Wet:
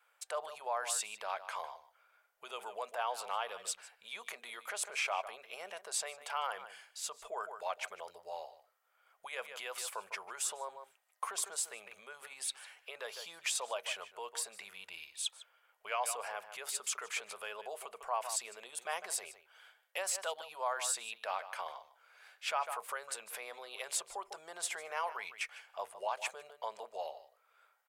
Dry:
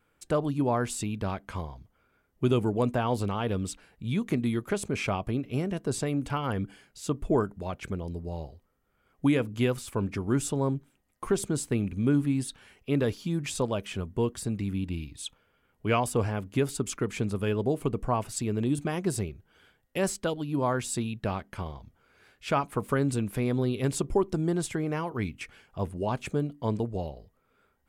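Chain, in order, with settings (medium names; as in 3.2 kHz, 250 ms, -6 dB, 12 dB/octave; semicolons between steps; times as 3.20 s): echo from a far wall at 26 m, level -16 dB; peak limiter -24.5 dBFS, peak gain reduction 11.5 dB; inverse Chebyshev high-pass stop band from 310 Hz, stop band 40 dB; trim +1.5 dB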